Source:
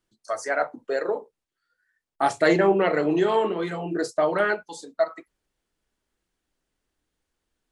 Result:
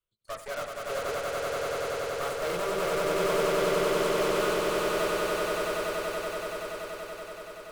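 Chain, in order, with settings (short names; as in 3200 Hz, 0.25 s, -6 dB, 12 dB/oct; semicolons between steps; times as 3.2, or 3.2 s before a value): bell 340 Hz -9.5 dB 0.54 oct; fixed phaser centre 1200 Hz, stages 8; added harmonics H 6 -11 dB, 7 -26 dB, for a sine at -26.5 dBFS; swelling echo 95 ms, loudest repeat 8, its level -3 dB; gain -5 dB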